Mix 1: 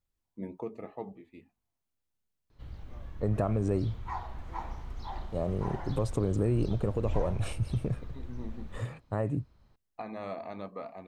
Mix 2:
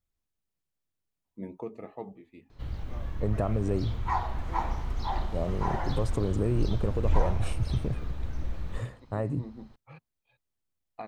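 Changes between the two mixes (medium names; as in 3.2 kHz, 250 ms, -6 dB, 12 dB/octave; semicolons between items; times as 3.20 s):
first voice: entry +1.00 s; background +8.5 dB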